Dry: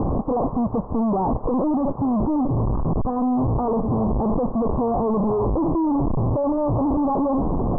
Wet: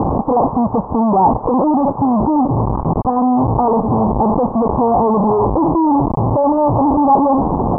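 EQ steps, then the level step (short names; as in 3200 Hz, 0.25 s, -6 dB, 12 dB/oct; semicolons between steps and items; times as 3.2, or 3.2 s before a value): HPF 80 Hz 6 dB/oct; bell 860 Hz +8 dB 0.47 oct; +6.5 dB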